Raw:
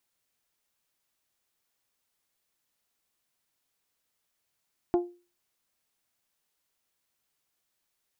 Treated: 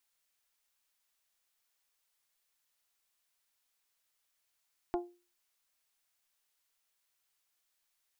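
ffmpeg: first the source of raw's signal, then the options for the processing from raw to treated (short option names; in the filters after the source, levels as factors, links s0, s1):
-f lavfi -i "aevalsrc='0.126*pow(10,-3*t/0.34)*sin(2*PI*351*t)+0.0501*pow(10,-3*t/0.209)*sin(2*PI*702*t)+0.02*pow(10,-3*t/0.184)*sin(2*PI*842.4*t)+0.00794*pow(10,-3*t/0.158)*sin(2*PI*1053*t)+0.00316*pow(10,-3*t/0.129)*sin(2*PI*1404*t)':d=0.89:s=44100"
-af "equalizer=f=170:w=0.39:g=-13.5"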